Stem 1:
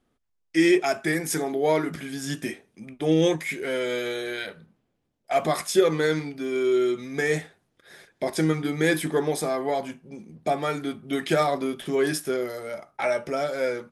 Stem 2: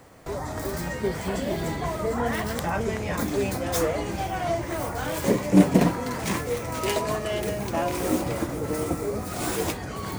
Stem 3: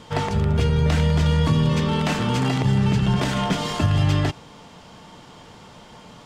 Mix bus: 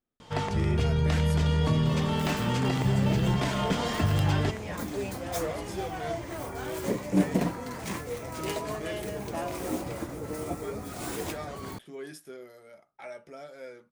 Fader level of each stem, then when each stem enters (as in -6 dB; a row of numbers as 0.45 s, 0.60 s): -17.5 dB, -7.5 dB, -6.0 dB; 0.00 s, 1.60 s, 0.20 s